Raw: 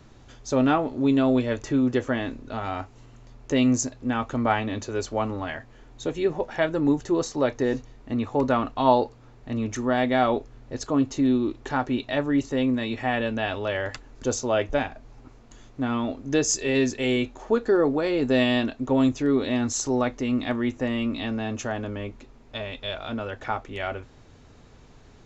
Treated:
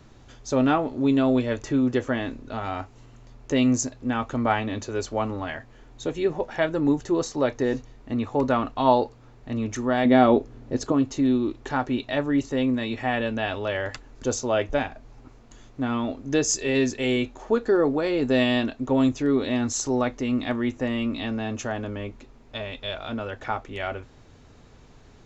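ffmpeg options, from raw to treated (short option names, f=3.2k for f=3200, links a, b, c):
-filter_complex "[0:a]asettb=1/sr,asplit=3[a][b][c];[a]atrim=end=10.054[d];[b]atrim=start=10.05:end=10.92,asetpts=PTS-STARTPTS,afade=t=in:d=0.004:c=qsin,afade=t=out:st=0.866:d=0.004:c=qsin,equalizer=f=260:w=0.56:g=8.5[e];[c]atrim=start=10.916[f];[d][e]acrossfade=d=0.004:c1=hsin:c2=qsin[g];[g][f]acrossfade=d=0.004:c1=qsin:c2=hsin"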